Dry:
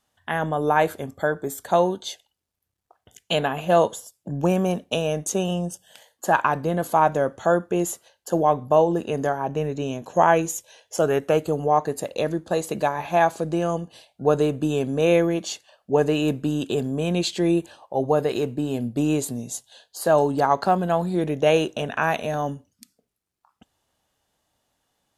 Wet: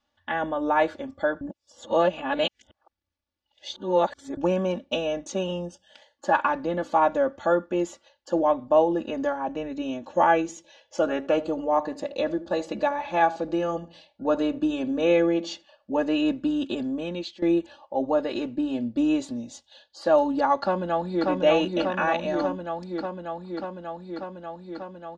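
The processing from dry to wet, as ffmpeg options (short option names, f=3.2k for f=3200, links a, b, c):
-filter_complex "[0:a]asettb=1/sr,asplit=3[a][b][c];[a]atrim=end=10.414[d];[b]atrim=start=10.41:end=15.99,asetpts=PTS-STARTPTS,afade=t=in:d=0.004:c=qsin,afade=t=out:st=5.576:d=0.004:c=qsin,asplit=2[e][f];[f]adelay=77,lowpass=f=880:p=1,volume=-14.5dB,asplit=2[g][h];[h]adelay=77,lowpass=f=880:p=1,volume=0.33,asplit=2[i][j];[j]adelay=77,lowpass=f=880:p=1,volume=0.33[k];[e][g][i][k]amix=inputs=4:normalize=0,atrim=end_sample=246078[l];[c]atrim=start=15.986[m];[d][l]acrossfade=d=0.004:c1=hsin:c2=qsin[n];[n][m]acrossfade=d=0.004:c1=qsin:c2=hsin,asplit=2[o][p];[p]afade=t=in:st=20.61:d=0.01,afade=t=out:st=21.28:d=0.01,aecho=0:1:590|1180|1770|2360|2950|3540|4130|4720|5310|5900|6490|7080:0.794328|0.635463|0.50837|0.406696|0.325357|0.260285|0.208228|0.166583|0.133266|0.106613|0.0852903|0.0682323[q];[o][q]amix=inputs=2:normalize=0,asplit=4[r][s][t][u];[r]atrim=end=1.412[v];[s]atrim=start=1.408:end=4.372,asetpts=PTS-STARTPTS,areverse[w];[t]atrim=start=4.368:end=17.42,asetpts=PTS-STARTPTS,afade=t=out:st=12.512:d=0.54:silence=0.133352[x];[u]atrim=start=17.42,asetpts=PTS-STARTPTS,afade=t=in:d=0.004:c=hsin:silence=0.133352[y];[v][w]acrossfade=d=0.004:c1=hsin:c2=hsin[z];[x][y]concat=n=2:v=0:a=1[aa];[z][aa]acrossfade=d=0.004:c1=hsin:c2=hsin,lowpass=f=5.3k:w=0.5412,lowpass=f=5.3k:w=1.3066,aecho=1:1:3.5:0.93,volume=-5dB"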